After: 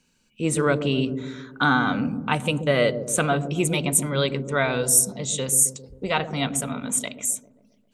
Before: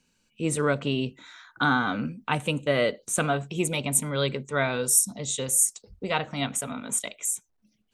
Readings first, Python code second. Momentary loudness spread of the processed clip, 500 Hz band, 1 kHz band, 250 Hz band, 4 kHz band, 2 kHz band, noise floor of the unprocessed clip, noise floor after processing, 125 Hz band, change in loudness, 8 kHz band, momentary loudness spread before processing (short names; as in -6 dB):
9 LU, +3.5 dB, +3.0 dB, +4.5 dB, +3.0 dB, +3.0 dB, -71 dBFS, -65 dBFS, +4.5 dB, +3.5 dB, +3.0 dB, 9 LU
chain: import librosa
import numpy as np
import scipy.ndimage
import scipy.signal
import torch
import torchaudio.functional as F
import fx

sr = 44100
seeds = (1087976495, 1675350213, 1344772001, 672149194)

y = fx.echo_wet_lowpass(x, sr, ms=133, feedback_pct=54, hz=410.0, wet_db=-4.5)
y = F.gain(torch.from_numpy(y), 3.0).numpy()